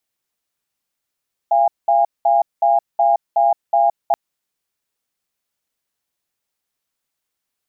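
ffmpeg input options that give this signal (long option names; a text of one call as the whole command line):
ffmpeg -f lavfi -i "aevalsrc='0.2*(sin(2*PI*686*t)+sin(2*PI*813*t))*clip(min(mod(t,0.37),0.17-mod(t,0.37))/0.005,0,1)':duration=2.63:sample_rate=44100" out.wav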